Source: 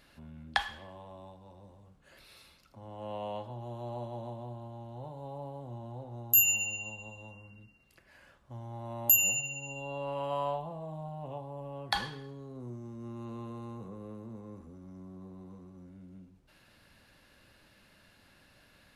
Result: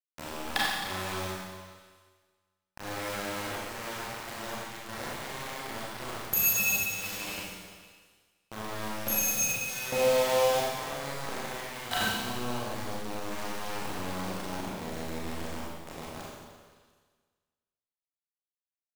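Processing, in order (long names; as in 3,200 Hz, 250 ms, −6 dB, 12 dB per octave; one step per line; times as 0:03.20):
pitch glide at a constant tempo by −3 semitones starting unshifted
high-pass filter 69 Hz 6 dB per octave
parametric band 230 Hz +4 dB 0.44 octaves
mains-hum notches 60/120/180/240/300 Hz
output level in coarse steps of 13 dB
leveller curve on the samples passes 2
downward compressor 3 to 1, threshold −39 dBFS, peak gain reduction 14.5 dB
bit reduction 7 bits
echo through a band-pass that steps 139 ms, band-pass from 200 Hz, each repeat 1.4 octaves, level −11 dB
four-comb reverb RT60 1.5 s, combs from 29 ms, DRR −6 dB
level +6 dB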